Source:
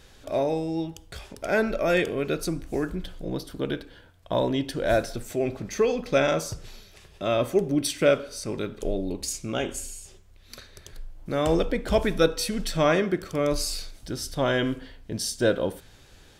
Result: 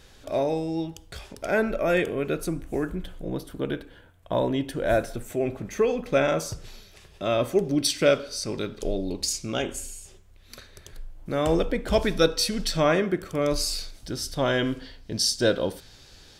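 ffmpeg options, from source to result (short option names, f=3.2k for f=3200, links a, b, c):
-af "asetnsamples=n=441:p=0,asendcmd='1.51 equalizer g -8;6.4 equalizer g 0.5;7.65 equalizer g 7.5;9.62 equalizer g -2;11.93 equalizer g 6.5;12.8 equalizer g -4.5;13.42 equalizer g 3;14.76 equalizer g 9.5',equalizer=f=4.8k:t=o:w=0.83:g=1"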